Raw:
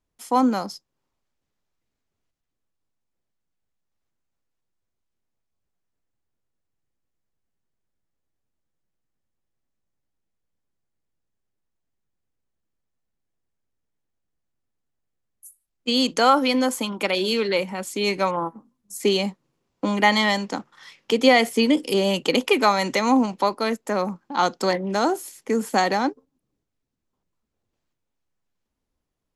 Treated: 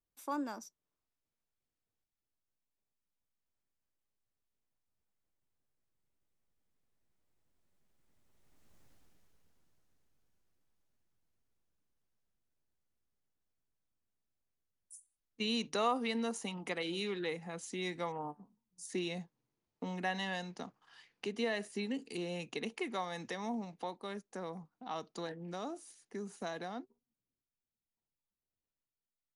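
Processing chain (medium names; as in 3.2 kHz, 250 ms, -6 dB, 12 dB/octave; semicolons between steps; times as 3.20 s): Doppler pass-by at 8.83 s, 40 m/s, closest 11 m; in parallel at +2 dB: compression, threshold -59 dBFS, peak gain reduction 19 dB; on the sum: trim +10.5 dB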